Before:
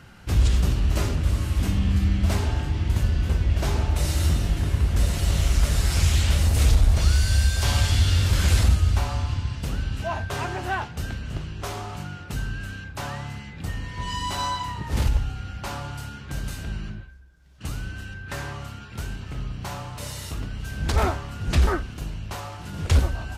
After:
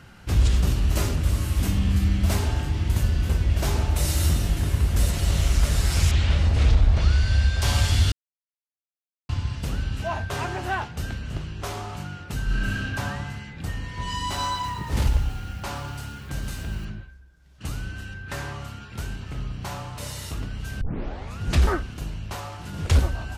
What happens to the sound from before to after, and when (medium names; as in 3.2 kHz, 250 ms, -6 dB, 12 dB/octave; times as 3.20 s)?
0.67–5.11 s: treble shelf 8.5 kHz +9 dB
6.11–7.62 s: low-pass 3.8 kHz
8.12–9.29 s: mute
12.44–12.93 s: reverb throw, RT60 1.8 s, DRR -7 dB
14.18–16.85 s: bit-crushed delay 117 ms, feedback 55%, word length 7-bit, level -12.5 dB
20.81 s: tape start 0.59 s